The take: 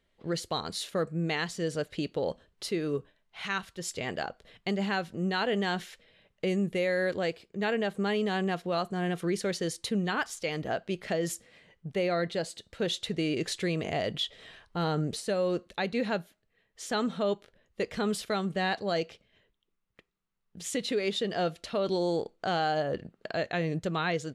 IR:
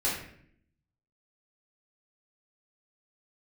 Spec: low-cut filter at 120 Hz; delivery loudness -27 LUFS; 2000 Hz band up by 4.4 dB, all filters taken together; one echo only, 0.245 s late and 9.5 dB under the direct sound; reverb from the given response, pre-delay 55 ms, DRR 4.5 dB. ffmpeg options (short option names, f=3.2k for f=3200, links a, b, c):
-filter_complex "[0:a]highpass=120,equalizer=f=2k:t=o:g=5.5,aecho=1:1:245:0.335,asplit=2[a][b];[1:a]atrim=start_sample=2205,adelay=55[c];[b][c]afir=irnorm=-1:irlink=0,volume=-13.5dB[d];[a][d]amix=inputs=2:normalize=0,volume=1.5dB"